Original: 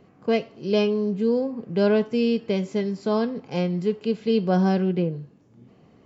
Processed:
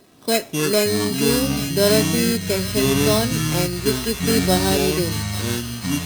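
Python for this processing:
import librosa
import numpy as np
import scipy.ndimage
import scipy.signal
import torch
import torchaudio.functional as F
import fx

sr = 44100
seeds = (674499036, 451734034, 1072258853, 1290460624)

y = fx.sample_hold(x, sr, seeds[0], rate_hz=4600.0, jitter_pct=0)
y = fx.low_shelf(y, sr, hz=170.0, db=-6.5)
y = y + 0.43 * np.pad(y, (int(3.1 * sr / 1000.0), 0))[:len(y)]
y = fx.echo_wet_highpass(y, sr, ms=839, feedback_pct=45, hz=1500.0, wet_db=-8.5)
y = fx.echo_pitch(y, sr, ms=117, semitones=-7, count=3, db_per_echo=-3.0)
y = fx.high_shelf(y, sr, hz=2500.0, db=8.0)
y = F.gain(torch.from_numpy(y), 2.5).numpy()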